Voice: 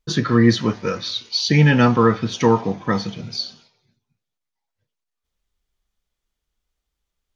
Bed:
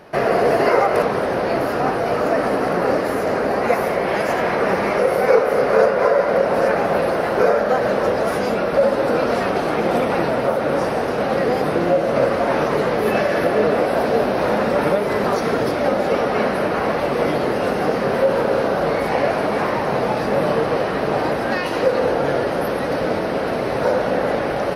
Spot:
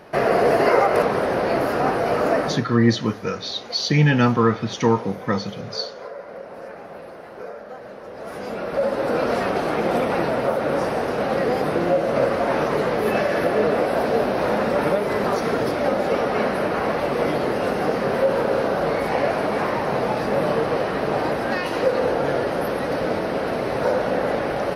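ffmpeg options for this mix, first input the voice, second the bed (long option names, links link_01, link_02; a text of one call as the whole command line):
ffmpeg -i stem1.wav -i stem2.wav -filter_complex "[0:a]adelay=2400,volume=-2.5dB[link_01];[1:a]volume=16dB,afade=type=out:start_time=2.35:duration=0.3:silence=0.11885,afade=type=in:start_time=8.09:duration=1.18:silence=0.141254[link_02];[link_01][link_02]amix=inputs=2:normalize=0" out.wav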